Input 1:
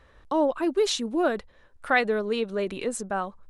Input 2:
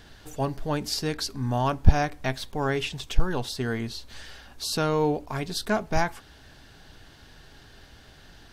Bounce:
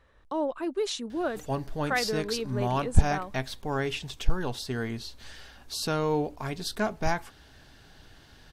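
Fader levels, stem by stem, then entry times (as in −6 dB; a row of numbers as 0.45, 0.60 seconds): −6.0, −3.0 decibels; 0.00, 1.10 seconds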